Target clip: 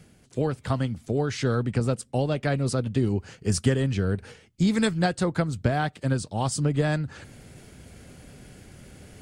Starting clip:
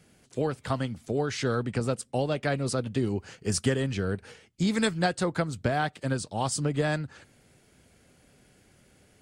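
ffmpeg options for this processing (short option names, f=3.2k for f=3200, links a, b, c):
-af "lowshelf=f=220:g=7.5,areverse,acompressor=mode=upward:threshold=-36dB:ratio=2.5,areverse"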